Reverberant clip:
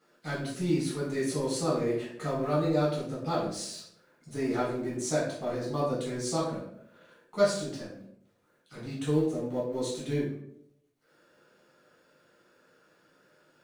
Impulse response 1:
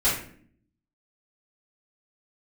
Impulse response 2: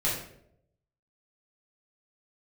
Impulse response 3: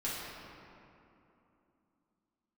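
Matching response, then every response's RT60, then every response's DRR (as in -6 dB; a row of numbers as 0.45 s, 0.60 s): 2; 0.55 s, 0.75 s, 2.9 s; -12.5 dB, -7.5 dB, -9.0 dB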